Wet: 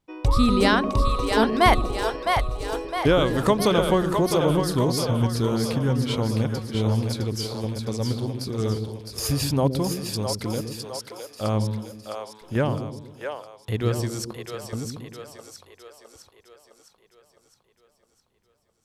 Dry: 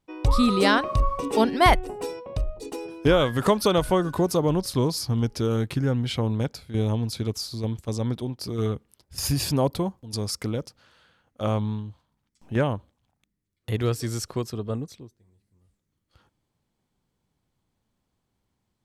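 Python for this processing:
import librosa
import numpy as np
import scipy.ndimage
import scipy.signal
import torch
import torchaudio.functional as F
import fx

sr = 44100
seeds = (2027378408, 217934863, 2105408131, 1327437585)

y = fx.level_steps(x, sr, step_db=21, at=(14.33, 14.73))
y = fx.echo_split(y, sr, split_hz=440.0, low_ms=119, high_ms=660, feedback_pct=52, wet_db=-5)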